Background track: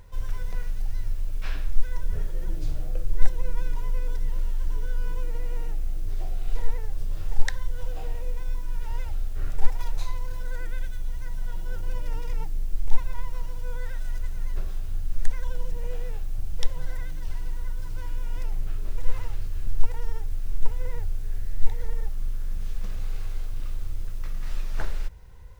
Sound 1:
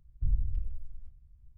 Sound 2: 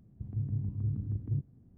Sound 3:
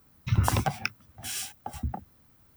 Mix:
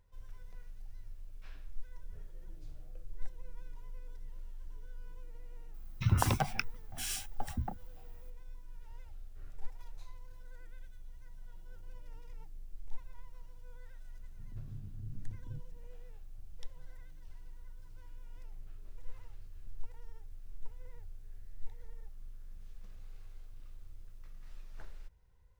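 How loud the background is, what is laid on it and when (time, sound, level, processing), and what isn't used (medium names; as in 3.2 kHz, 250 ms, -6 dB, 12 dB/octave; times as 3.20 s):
background track -20 dB
5.74 s: add 3 -4 dB
14.19 s: add 2 -13.5 dB
not used: 1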